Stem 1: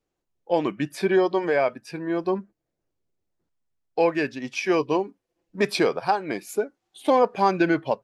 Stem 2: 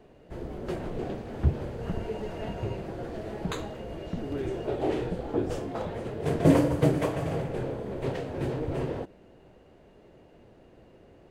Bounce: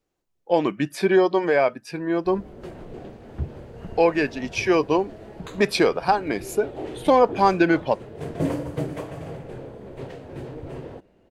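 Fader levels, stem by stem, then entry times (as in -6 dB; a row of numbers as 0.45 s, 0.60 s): +2.5 dB, -5.0 dB; 0.00 s, 1.95 s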